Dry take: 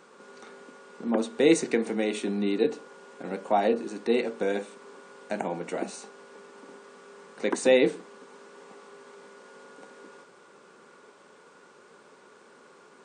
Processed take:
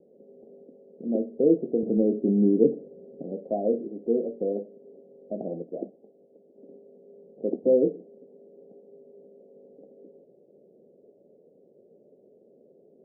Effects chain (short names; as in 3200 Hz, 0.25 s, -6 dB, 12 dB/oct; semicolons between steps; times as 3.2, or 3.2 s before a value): steep low-pass 660 Hz 72 dB/oct; 1.83–3.23 tilt -3.5 dB/oct; 5.62–6.58 harmonic-percussive split harmonic -11 dB